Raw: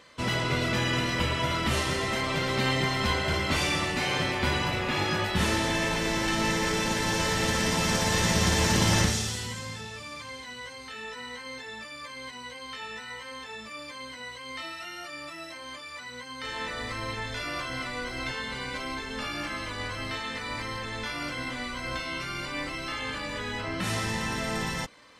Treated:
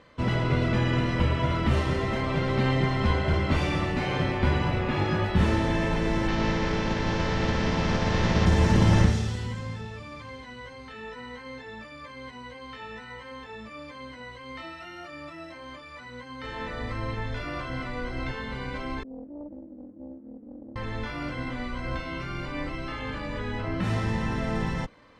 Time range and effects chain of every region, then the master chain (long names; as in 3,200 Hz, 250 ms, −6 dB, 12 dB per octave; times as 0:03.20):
0:06.27–0:08.45: compressing power law on the bin magnitudes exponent 0.69 + low-pass filter 6,000 Hz 24 dB per octave
0:19.03–0:20.76: flat-topped band-pass 270 Hz, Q 2.8 + highs frequency-modulated by the lows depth 0.89 ms
whole clip: low-pass filter 3,000 Hz 6 dB per octave; spectral tilt −2 dB per octave